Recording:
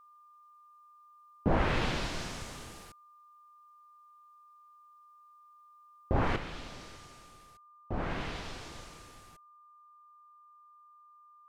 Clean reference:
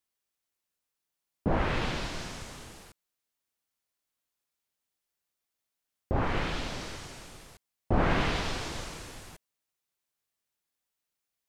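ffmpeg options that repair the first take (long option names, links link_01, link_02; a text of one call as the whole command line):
ffmpeg -i in.wav -af "bandreject=frequency=1200:width=30,asetnsamples=nb_out_samples=441:pad=0,asendcmd='6.36 volume volume 9.5dB',volume=0dB" out.wav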